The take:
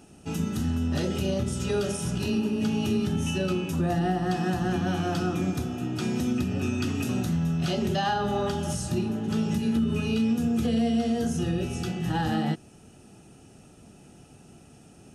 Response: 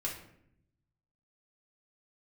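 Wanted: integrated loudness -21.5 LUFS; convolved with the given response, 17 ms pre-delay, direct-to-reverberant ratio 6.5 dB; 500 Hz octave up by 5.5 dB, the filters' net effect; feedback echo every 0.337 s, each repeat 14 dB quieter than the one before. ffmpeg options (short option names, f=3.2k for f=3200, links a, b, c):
-filter_complex "[0:a]equalizer=f=500:t=o:g=7.5,aecho=1:1:337|674:0.2|0.0399,asplit=2[a][b];[1:a]atrim=start_sample=2205,adelay=17[c];[b][c]afir=irnorm=-1:irlink=0,volume=-9dB[d];[a][d]amix=inputs=2:normalize=0,volume=2.5dB"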